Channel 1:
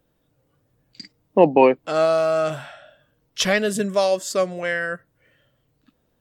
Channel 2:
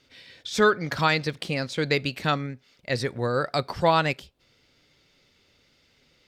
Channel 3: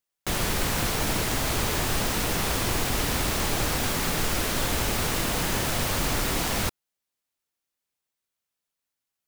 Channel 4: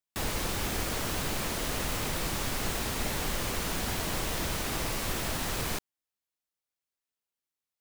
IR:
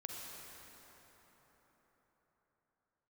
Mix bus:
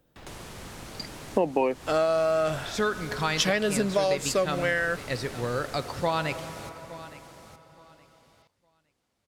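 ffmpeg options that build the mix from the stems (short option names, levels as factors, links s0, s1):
-filter_complex "[0:a]volume=1.06[s0];[1:a]adelay=2200,volume=0.473,asplit=3[s1][s2][s3];[s2]volume=0.501[s4];[s3]volume=0.141[s5];[2:a]highpass=59,acrossover=split=1300|3900[s6][s7][s8];[s6]acompressor=threshold=0.0178:ratio=4[s9];[s7]acompressor=threshold=0.00447:ratio=4[s10];[s8]acompressor=threshold=0.0112:ratio=4[s11];[s9][s10][s11]amix=inputs=3:normalize=0,lowpass=11000,volume=0.376,asplit=2[s12][s13];[s13]volume=0.376[s14];[3:a]acrossover=split=4600[s15][s16];[s16]acompressor=threshold=0.00398:ratio=4:attack=1:release=60[s17];[s15][s17]amix=inputs=2:normalize=0,highshelf=f=9800:g=-8.5,alimiter=level_in=1.68:limit=0.0631:level=0:latency=1,volume=0.596,volume=0.335[s18];[4:a]atrim=start_sample=2205[s19];[s4][s19]afir=irnorm=-1:irlink=0[s20];[s5][s14]amix=inputs=2:normalize=0,aecho=0:1:865|1730|2595|3460:1|0.22|0.0484|0.0106[s21];[s0][s1][s12][s18][s20][s21]amix=inputs=6:normalize=0,acompressor=threshold=0.0891:ratio=6"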